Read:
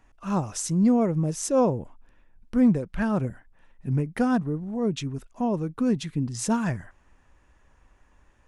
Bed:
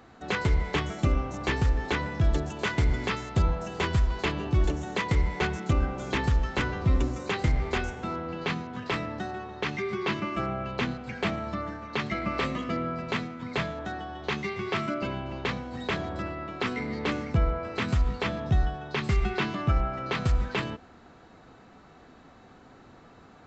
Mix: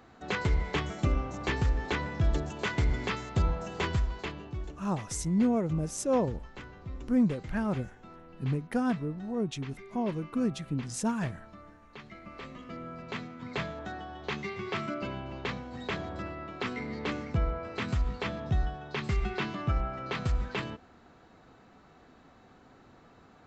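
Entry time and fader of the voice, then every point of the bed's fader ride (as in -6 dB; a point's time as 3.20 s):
4.55 s, -5.5 dB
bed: 3.89 s -3 dB
4.80 s -17.5 dB
12.22 s -17.5 dB
13.46 s -4.5 dB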